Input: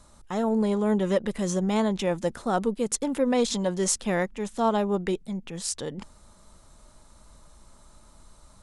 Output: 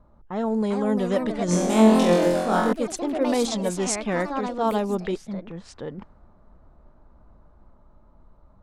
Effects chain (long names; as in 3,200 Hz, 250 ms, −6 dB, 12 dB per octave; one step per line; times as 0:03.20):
delay with pitch and tempo change per echo 448 ms, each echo +3 semitones, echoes 3, each echo −6 dB
0:01.46–0:02.73: flutter between parallel walls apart 3.9 metres, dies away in 0.81 s
low-pass that shuts in the quiet parts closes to 890 Hz, open at −18 dBFS